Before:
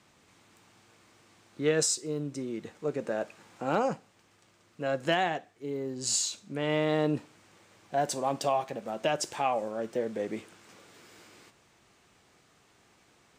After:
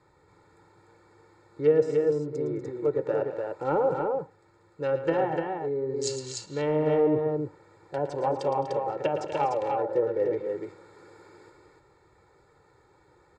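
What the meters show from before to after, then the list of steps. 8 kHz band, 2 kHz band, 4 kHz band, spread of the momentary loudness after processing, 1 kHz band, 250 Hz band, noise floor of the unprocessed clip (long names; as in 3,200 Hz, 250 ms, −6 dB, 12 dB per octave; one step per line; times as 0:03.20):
−10.0 dB, −4.5 dB, −7.5 dB, 10 LU, +2.0 dB, +2.0 dB, −64 dBFS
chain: adaptive Wiener filter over 15 samples
treble cut that deepens with the level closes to 860 Hz, closed at −24.5 dBFS
parametric band 8,200 Hz +5.5 dB 1.4 octaves
comb filter 2.2 ms, depth 87%
on a send: multi-tap delay 112/212/243/297 ms −10.5/−19.5/−12/−4 dB
on the sum: level +1.5 dB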